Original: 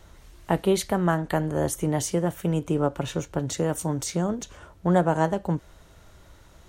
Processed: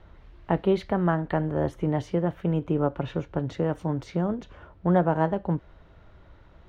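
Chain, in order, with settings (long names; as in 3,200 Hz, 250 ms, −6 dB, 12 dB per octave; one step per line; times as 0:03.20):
high-frequency loss of the air 340 metres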